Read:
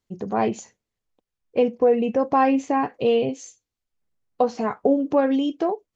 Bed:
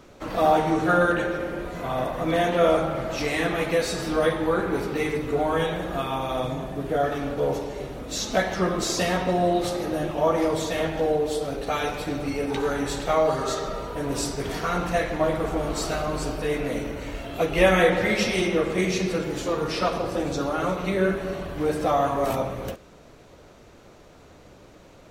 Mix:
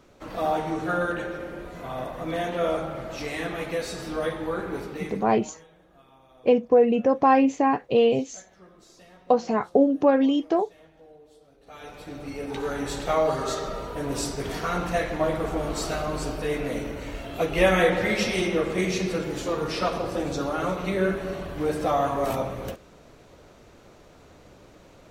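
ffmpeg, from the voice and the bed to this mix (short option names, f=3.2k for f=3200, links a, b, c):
-filter_complex "[0:a]adelay=4900,volume=0.5dB[a];[1:a]volume=20.5dB,afade=t=out:st=4.76:d=0.79:silence=0.0794328,afade=t=in:st=11.6:d=1.48:silence=0.0473151[b];[a][b]amix=inputs=2:normalize=0"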